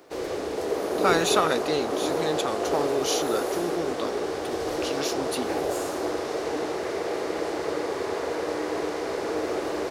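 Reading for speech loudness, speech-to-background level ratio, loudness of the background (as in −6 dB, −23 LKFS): −28.5 LKFS, 0.0 dB, −28.5 LKFS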